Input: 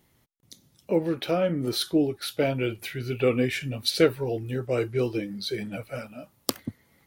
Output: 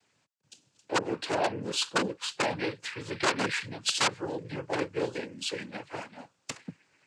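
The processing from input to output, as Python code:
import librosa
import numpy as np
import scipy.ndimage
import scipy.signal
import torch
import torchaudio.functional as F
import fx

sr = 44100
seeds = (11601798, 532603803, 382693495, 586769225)

y = (np.mod(10.0 ** (15.5 / 20.0) * x + 1.0, 2.0) - 1.0) / 10.0 ** (15.5 / 20.0)
y = fx.low_shelf(y, sr, hz=290.0, db=-11.5)
y = fx.noise_vocoder(y, sr, seeds[0], bands=8)
y = y * librosa.db_to_amplitude(-1.0)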